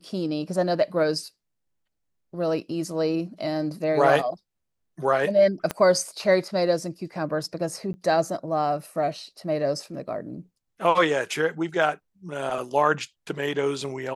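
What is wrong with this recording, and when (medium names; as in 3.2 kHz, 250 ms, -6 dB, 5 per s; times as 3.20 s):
5.71 s: pop -12 dBFS
7.93–7.94 s: dropout 10 ms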